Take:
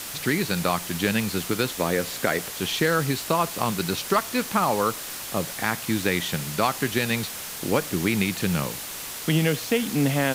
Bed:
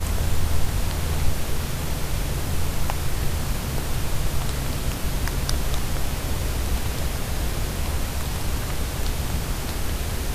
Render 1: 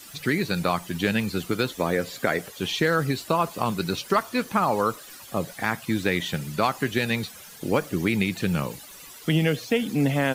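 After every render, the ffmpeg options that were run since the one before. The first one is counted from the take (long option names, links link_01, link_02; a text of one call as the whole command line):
ffmpeg -i in.wav -af "afftdn=noise_reduction=14:noise_floor=-35" out.wav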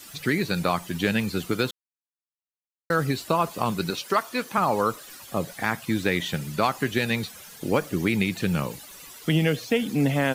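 ffmpeg -i in.wav -filter_complex "[0:a]asettb=1/sr,asplit=3[link_01][link_02][link_03];[link_01]atrim=end=3.904[link_04];[link_02]atrim=start=3.9:end=4.58,asetpts=PTS-STARTPTS,afade=type=in:duration=0.004:curve=qsin,afade=type=out:start_time=0.676:duration=0.004:curve=qsin,highpass=frequency=330:poles=1[link_05];[link_03]atrim=start=4.576[link_06];[link_04][link_05]acrossfade=duration=0.004:curve1=hsin:curve2=qsin[link_07];[link_07][link_06]acrossfade=duration=0.004:curve1=qsin:curve2=hsin,asplit=3[link_08][link_09][link_10];[link_08]atrim=end=1.71,asetpts=PTS-STARTPTS,afade=type=out:start_time=1.706:duration=0.004:curve=hsin[link_11];[link_09]atrim=start=1.71:end=2.9,asetpts=PTS-STARTPTS,volume=0[link_12];[link_10]atrim=start=2.9,asetpts=PTS-STARTPTS,afade=type=in:duration=0.004:curve=hsin[link_13];[link_11][link_12][link_13]concat=n=3:v=0:a=1" out.wav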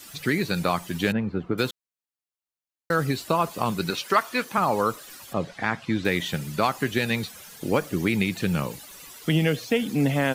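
ffmpeg -i in.wav -filter_complex "[0:a]asettb=1/sr,asplit=3[link_01][link_02][link_03];[link_01]atrim=end=1.124[link_04];[link_02]atrim=start=1.12:end=1.58,asetpts=PTS-STARTPTS,afade=type=in:duration=0.004:curve=qsin,afade=type=out:start_time=0.456:duration=0.004:curve=qsin,lowpass=1200[link_05];[link_03]atrim=start=1.576[link_06];[link_04][link_05]acrossfade=duration=0.004:curve1=hsin:curve2=qsin[link_07];[link_07][link_06]acrossfade=duration=0.004:curve1=qsin:curve2=hsin,asettb=1/sr,asplit=3[link_08][link_09][link_10];[link_08]atrim=end=3.874[link_11];[link_09]atrim=start=3.87:end=4.45,asetpts=PTS-STARTPTS,afade=type=in:duration=0.004:curve=qsin,afade=type=out:start_time=0.576:duration=0.004:curve=qsin,equalizer=frequency=1900:width_type=o:width=1.7:gain=4.5[link_12];[link_10]atrim=start=4.446[link_13];[link_11][link_12]acrossfade=duration=0.004:curve1=hsin:curve2=qsin[link_14];[link_14][link_13]acrossfade=duration=0.004:curve1=qsin:curve2=hsin,asettb=1/sr,asplit=3[link_15][link_16][link_17];[link_15]atrim=end=5.334[link_18];[link_16]atrim=start=5.33:end=6.05,asetpts=PTS-STARTPTS,afade=type=in:duration=0.004:curve=qsin,afade=type=out:start_time=0.716:duration=0.004:curve=qsin,lowpass=4500[link_19];[link_17]atrim=start=6.046[link_20];[link_18][link_19]acrossfade=duration=0.004:curve1=hsin:curve2=qsin[link_21];[link_21][link_20]acrossfade=duration=0.004:curve1=qsin:curve2=hsin" out.wav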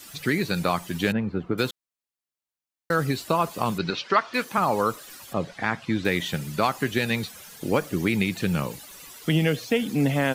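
ffmpeg -i in.wav -filter_complex "[0:a]asettb=1/sr,asplit=3[link_01][link_02][link_03];[link_01]atrim=end=3.784[link_04];[link_02]atrim=start=3.78:end=4.34,asetpts=PTS-STARTPTS,afade=type=in:duration=0.004:curve=qsin,afade=type=out:start_time=0.556:duration=0.004:curve=qsin,lowpass=frequency=5200:width=0.5412,lowpass=frequency=5200:width=1.3066[link_05];[link_03]atrim=start=4.336[link_06];[link_04][link_05]acrossfade=duration=0.004:curve1=hsin:curve2=qsin[link_07];[link_07][link_06]acrossfade=duration=0.004:curve1=qsin:curve2=hsin" out.wav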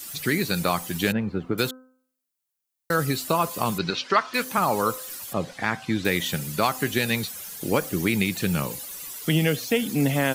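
ffmpeg -i in.wav -af "highshelf=frequency=6700:gain=11.5,bandreject=frequency=256.9:width_type=h:width=4,bandreject=frequency=513.8:width_type=h:width=4,bandreject=frequency=770.7:width_type=h:width=4,bandreject=frequency=1027.6:width_type=h:width=4,bandreject=frequency=1284.5:width_type=h:width=4,bandreject=frequency=1541.4:width_type=h:width=4" out.wav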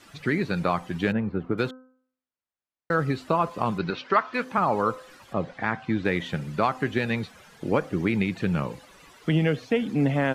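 ffmpeg -i in.wav -af "lowpass=1800,aemphasis=mode=production:type=cd" out.wav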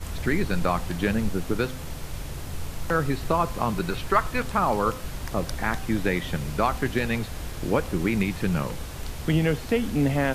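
ffmpeg -i in.wav -i bed.wav -filter_complex "[1:a]volume=-9dB[link_01];[0:a][link_01]amix=inputs=2:normalize=0" out.wav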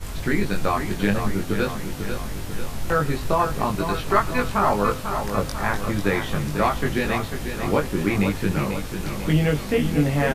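ffmpeg -i in.wav -filter_complex "[0:a]asplit=2[link_01][link_02];[link_02]adelay=20,volume=-2dB[link_03];[link_01][link_03]amix=inputs=2:normalize=0,aecho=1:1:495|990|1485|1980|2475|2970|3465:0.398|0.231|0.134|0.0777|0.0451|0.0261|0.0152" out.wav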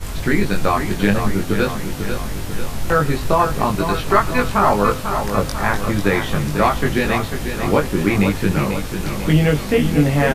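ffmpeg -i in.wav -af "volume=5dB,alimiter=limit=-2dB:level=0:latency=1" out.wav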